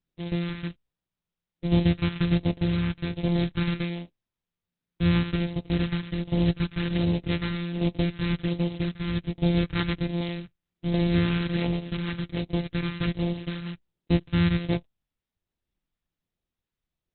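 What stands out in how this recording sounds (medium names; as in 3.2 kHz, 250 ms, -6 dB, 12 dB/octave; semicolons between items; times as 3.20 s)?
a buzz of ramps at a fixed pitch in blocks of 256 samples; phasing stages 2, 1.3 Hz, lowest notch 640–1300 Hz; tremolo saw down 0.64 Hz, depth 50%; Opus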